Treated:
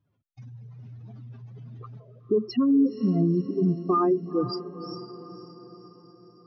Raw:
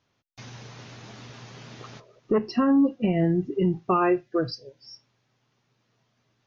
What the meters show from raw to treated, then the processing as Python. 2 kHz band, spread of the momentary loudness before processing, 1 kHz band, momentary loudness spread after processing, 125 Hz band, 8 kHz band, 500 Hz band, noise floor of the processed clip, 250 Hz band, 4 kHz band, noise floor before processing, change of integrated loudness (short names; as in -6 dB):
under -15 dB, 22 LU, -2.5 dB, 22 LU, +1.0 dB, n/a, -0.5 dB, -73 dBFS, 0.0 dB, -2.0 dB, -73 dBFS, -0.5 dB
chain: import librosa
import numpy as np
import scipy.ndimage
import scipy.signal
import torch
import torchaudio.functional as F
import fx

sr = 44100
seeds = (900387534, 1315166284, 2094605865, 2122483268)

y = fx.spec_expand(x, sr, power=2.6)
y = fx.wow_flutter(y, sr, seeds[0], rate_hz=2.1, depth_cents=28.0)
y = fx.echo_diffused(y, sr, ms=494, feedback_pct=53, wet_db=-12.5)